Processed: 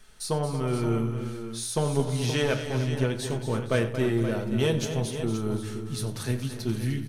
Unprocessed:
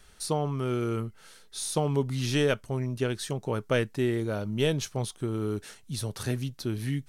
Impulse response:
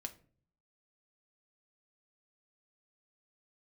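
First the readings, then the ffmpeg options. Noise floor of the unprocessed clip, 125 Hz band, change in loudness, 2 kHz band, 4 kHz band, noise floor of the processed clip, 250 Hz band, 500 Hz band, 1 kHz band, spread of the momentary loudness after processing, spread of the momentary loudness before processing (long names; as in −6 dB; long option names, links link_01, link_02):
−55 dBFS, +3.0 dB, +2.0 dB, +1.5 dB, +1.0 dB, −37 dBFS, +2.5 dB, +1.5 dB, +0.5 dB, 6 LU, 8 LU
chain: -filter_complex "[0:a]aeval=exprs='0.237*(cos(1*acos(clip(val(0)/0.237,-1,1)))-cos(1*PI/2))+0.0422*(cos(2*acos(clip(val(0)/0.237,-1,1)))-cos(2*PI/2))':channel_layout=same,aecho=1:1:93|226|302|467|524:0.168|0.299|0.211|0.112|0.299[link_01];[1:a]atrim=start_sample=2205[link_02];[link_01][link_02]afir=irnorm=-1:irlink=0,volume=3.5dB"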